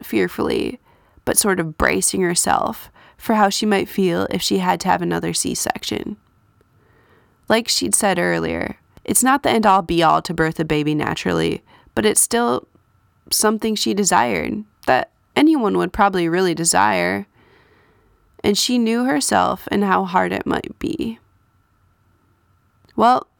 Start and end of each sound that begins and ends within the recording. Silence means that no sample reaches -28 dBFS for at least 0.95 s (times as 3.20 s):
7.50–17.22 s
18.39–21.13 s